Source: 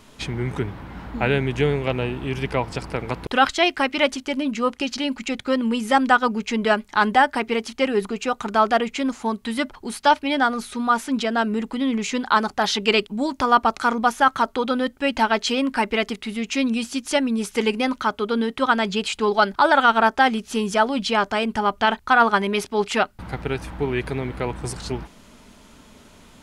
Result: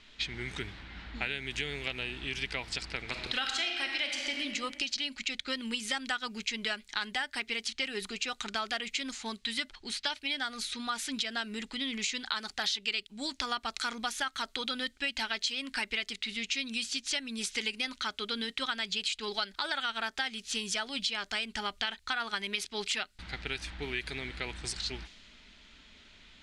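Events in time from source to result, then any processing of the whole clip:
3.01–4.41 reverb throw, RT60 1.5 s, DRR 2 dB
whole clip: low-pass opened by the level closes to 2800 Hz, open at -18.5 dBFS; graphic EQ 125/250/500/1000/2000/4000/8000 Hz -11/-5/-8/-9/+5/+10/+7 dB; compressor, threshold -24 dBFS; gain -6 dB

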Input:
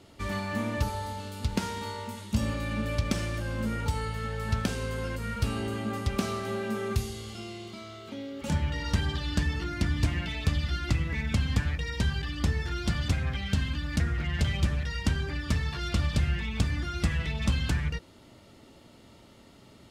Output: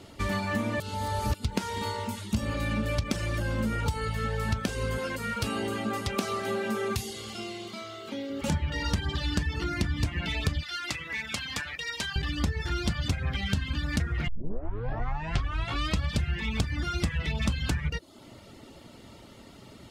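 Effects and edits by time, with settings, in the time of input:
0.8–1.34 reverse
4.98–8.3 HPF 250 Hz 6 dB/oct
10.63–12.16 HPF 1300 Hz 6 dB/oct
14.28 tape start 1.81 s
whole clip: reverb removal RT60 0.52 s; compressor 4:1, threshold -31 dBFS; gain +6 dB

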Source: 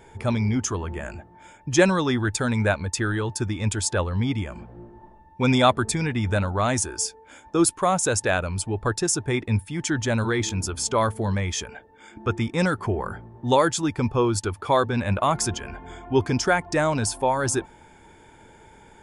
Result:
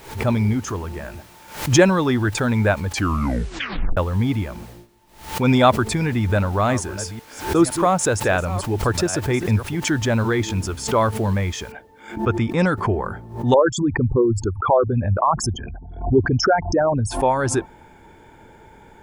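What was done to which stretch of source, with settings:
0.53–1.69 resonator 150 Hz, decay 0.6 s, mix 30%
2.87 tape stop 1.10 s
4.69–5.49 dip -16 dB, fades 0.18 s
6.17–9.82 reverse delay 0.512 s, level -13 dB
11.72 noise floor step -46 dB -67 dB
13.54–17.11 formant sharpening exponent 3
whole clip: high shelf 3900 Hz -11.5 dB; backwards sustainer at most 110 dB/s; gain +4 dB

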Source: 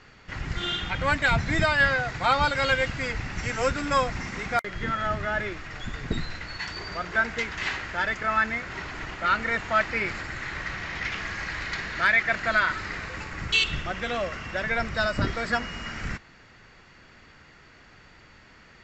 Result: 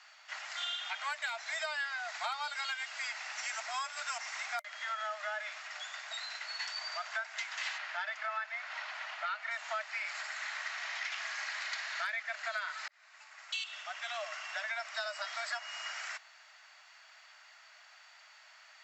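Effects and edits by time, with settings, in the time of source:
3.6–4.18 reverse
7.78–9.51 LPF 4400 Hz
12.88–14.58 fade in
whole clip: Chebyshev high-pass 600 Hz, order 10; high shelf 4000 Hz +10.5 dB; compressor 6:1, threshold -29 dBFS; gain -5.5 dB

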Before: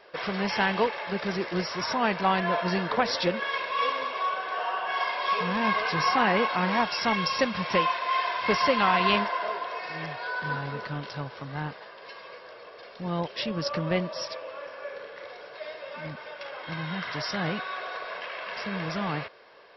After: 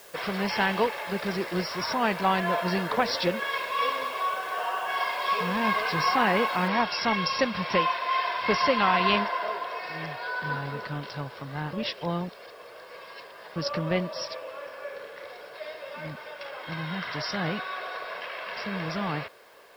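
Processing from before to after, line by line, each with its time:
6.68 noise floor step -52 dB -65 dB
11.73–13.56 reverse

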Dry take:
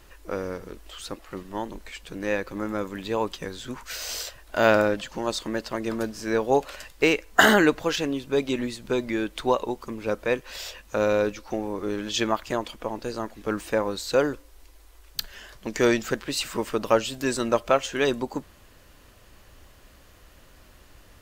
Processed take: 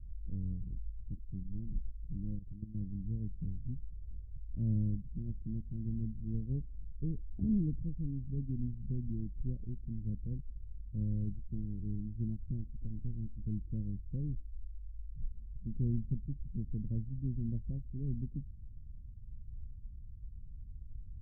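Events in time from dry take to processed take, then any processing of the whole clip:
2.35–2.81 level quantiser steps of 14 dB
whole clip: inverse Chebyshev low-pass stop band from 1000 Hz, stop band 80 dB; low shelf 110 Hz +8.5 dB; gain +1 dB

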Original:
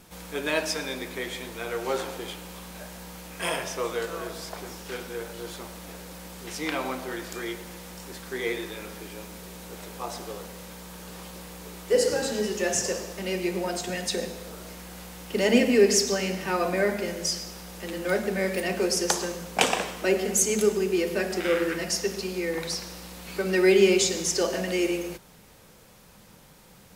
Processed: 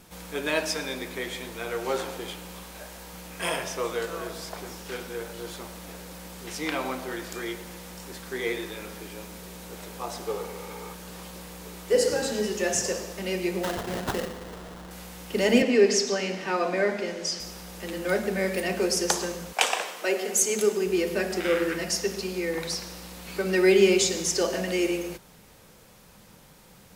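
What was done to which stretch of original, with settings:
2.63–3.13 bell 150 Hz -8.5 dB 0.89 oct
10.26–10.92 small resonant body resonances 440/850/1200/2200 Hz, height 10 dB -> 13 dB, ringing for 30 ms
13.63–14.91 sample-rate reducer 2400 Hz, jitter 20%
15.62–17.4 three-band isolator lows -17 dB, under 170 Hz, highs -17 dB, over 7200 Hz
19.52–20.85 HPF 730 Hz -> 210 Hz

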